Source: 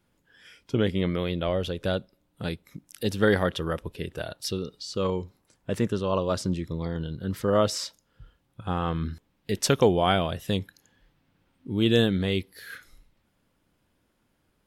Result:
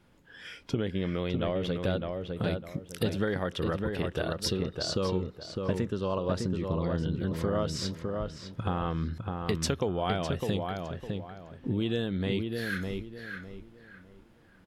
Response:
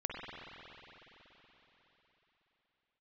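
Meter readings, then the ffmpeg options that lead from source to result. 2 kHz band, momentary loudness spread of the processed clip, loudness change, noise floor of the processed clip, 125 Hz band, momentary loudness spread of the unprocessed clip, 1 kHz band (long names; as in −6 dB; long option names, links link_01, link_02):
−4.0 dB, 9 LU, −4.5 dB, −58 dBFS, −2.0 dB, 15 LU, −5.0 dB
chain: -filter_complex "[0:a]highshelf=frequency=7100:gain=-11,acompressor=threshold=-36dB:ratio=6,asplit=2[link_01][link_02];[link_02]adelay=606,lowpass=frequency=2200:poles=1,volume=-4dB,asplit=2[link_03][link_04];[link_04]adelay=606,lowpass=frequency=2200:poles=1,volume=0.31,asplit=2[link_05][link_06];[link_06]adelay=606,lowpass=frequency=2200:poles=1,volume=0.31,asplit=2[link_07][link_08];[link_08]adelay=606,lowpass=frequency=2200:poles=1,volume=0.31[link_09];[link_01][link_03][link_05][link_07][link_09]amix=inputs=5:normalize=0,volume=8dB"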